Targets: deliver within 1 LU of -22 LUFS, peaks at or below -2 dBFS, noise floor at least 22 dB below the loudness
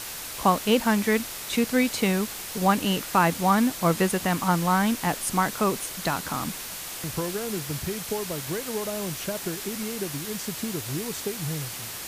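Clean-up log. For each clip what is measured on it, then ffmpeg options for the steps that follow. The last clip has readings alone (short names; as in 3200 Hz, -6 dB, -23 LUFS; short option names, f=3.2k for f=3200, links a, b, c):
noise floor -36 dBFS; noise floor target -48 dBFS; loudness -26.0 LUFS; peak -7.5 dBFS; loudness target -22.0 LUFS
-> -af "afftdn=nr=12:nf=-36"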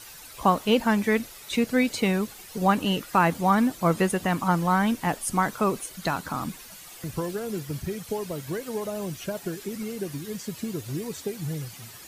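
noise floor -45 dBFS; noise floor target -49 dBFS
-> -af "afftdn=nr=6:nf=-45"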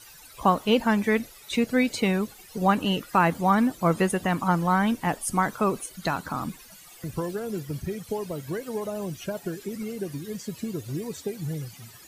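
noise floor -49 dBFS; loudness -26.5 LUFS; peak -8.0 dBFS; loudness target -22.0 LUFS
-> -af "volume=4.5dB"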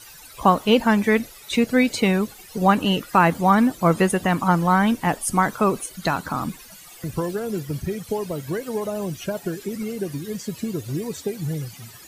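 loudness -22.0 LUFS; peak -3.5 dBFS; noise floor -45 dBFS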